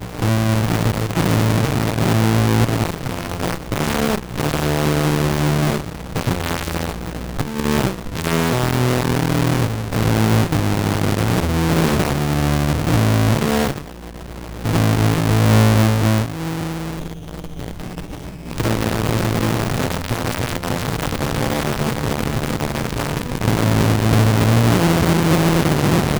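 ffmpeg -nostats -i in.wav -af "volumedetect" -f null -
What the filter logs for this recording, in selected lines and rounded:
mean_volume: -18.1 dB
max_volume: -6.3 dB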